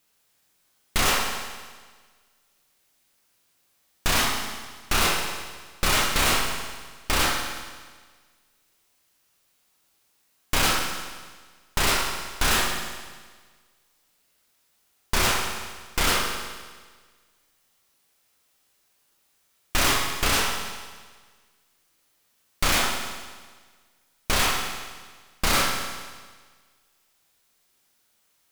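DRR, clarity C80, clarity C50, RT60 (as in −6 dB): 0.5 dB, 5.0 dB, 3.5 dB, 1.5 s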